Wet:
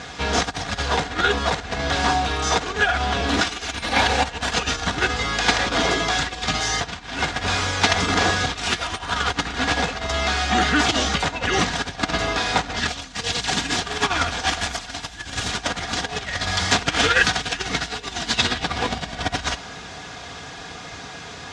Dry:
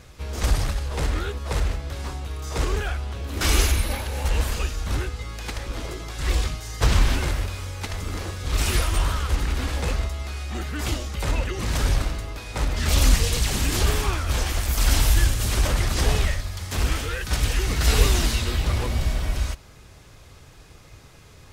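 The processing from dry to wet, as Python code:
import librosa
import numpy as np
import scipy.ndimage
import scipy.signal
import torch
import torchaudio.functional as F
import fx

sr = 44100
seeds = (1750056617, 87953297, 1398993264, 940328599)

y = x + 0.51 * np.pad(x, (int(4.2 * sr / 1000.0), 0))[:len(x)]
y = fx.over_compress(y, sr, threshold_db=-28.0, ratio=-1.0)
y = fx.cabinet(y, sr, low_hz=140.0, low_slope=12, high_hz=7000.0, hz=(230.0, 500.0, 750.0, 1600.0, 3500.0), db=(-5, -6, 7, 5, 4))
y = F.gain(torch.from_numpy(y), 8.5).numpy()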